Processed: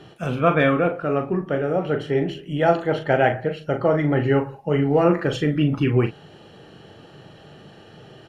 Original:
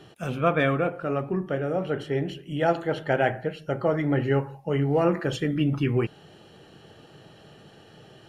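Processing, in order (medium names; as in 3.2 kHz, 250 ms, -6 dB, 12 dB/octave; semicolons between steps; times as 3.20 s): treble shelf 6.5 kHz -9 dB; doubling 40 ms -8 dB; trim +4.5 dB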